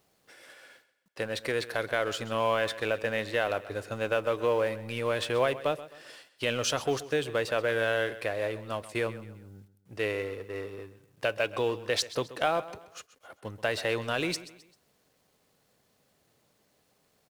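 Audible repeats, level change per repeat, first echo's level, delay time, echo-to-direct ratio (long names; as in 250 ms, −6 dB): 3, −8.0 dB, −16.0 dB, 131 ms, −15.5 dB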